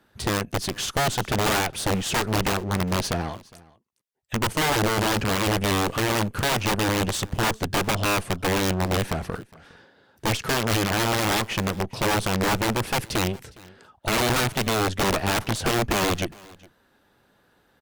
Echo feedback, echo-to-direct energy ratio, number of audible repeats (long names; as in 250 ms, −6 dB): repeats not evenly spaced, −23.5 dB, 1